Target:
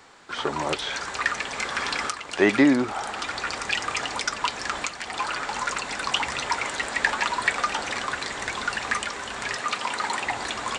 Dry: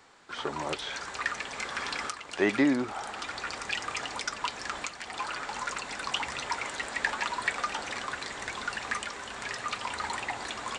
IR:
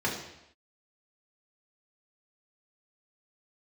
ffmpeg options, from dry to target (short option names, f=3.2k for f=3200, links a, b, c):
-filter_complex "[0:a]asettb=1/sr,asplit=3[a][b][c];[a]atrim=end=9.584[d];[b]atrim=start=9.58:end=10.25,asetpts=PTS-STARTPTS,afade=t=in:d=0.004:c=qsin,afade=t=out:st=0.666:d=0.004:c=qsin,highpass=160[e];[c]atrim=start=10.246[f];[d][e]acrossfade=d=0.004:c1=hsin:c2=qsin[g];[g][f]acrossfade=d=0.004:c1=qsin:c2=hsin,volume=6.5dB"